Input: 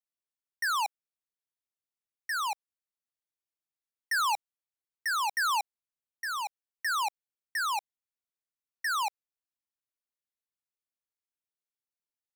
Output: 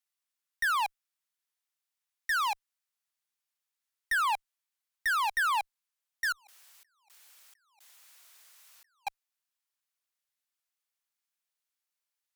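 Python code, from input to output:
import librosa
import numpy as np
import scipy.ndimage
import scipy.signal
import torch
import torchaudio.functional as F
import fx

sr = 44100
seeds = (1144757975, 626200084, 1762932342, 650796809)

y = scipy.signal.sosfilt(scipy.signal.butter(2, 930.0, 'highpass', fs=sr, output='sos'), x)
y = fx.over_compress(y, sr, threshold_db=-57.0, ratio=-0.5, at=(6.32, 9.07))
y = fx.clip_asym(y, sr, top_db=-32.5, bottom_db=-29.0)
y = F.gain(torch.from_numpy(y), 6.5).numpy()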